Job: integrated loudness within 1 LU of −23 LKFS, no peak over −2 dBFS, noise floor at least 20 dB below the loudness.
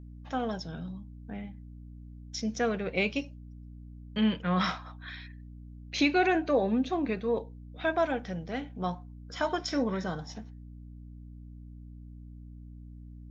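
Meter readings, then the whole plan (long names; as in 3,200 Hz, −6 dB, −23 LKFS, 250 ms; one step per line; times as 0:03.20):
mains hum 60 Hz; hum harmonics up to 300 Hz; level of the hum −43 dBFS; integrated loudness −31.0 LKFS; sample peak −12.5 dBFS; target loudness −23.0 LKFS
→ hum removal 60 Hz, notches 5
level +8 dB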